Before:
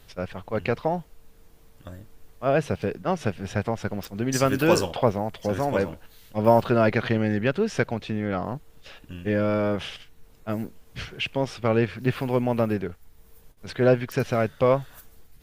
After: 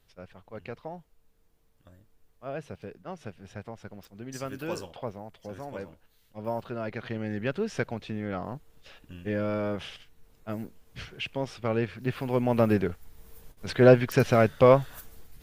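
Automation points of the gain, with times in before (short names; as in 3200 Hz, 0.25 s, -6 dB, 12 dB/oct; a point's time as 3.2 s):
6.84 s -14.5 dB
7.52 s -6 dB
12.14 s -6 dB
12.76 s +2.5 dB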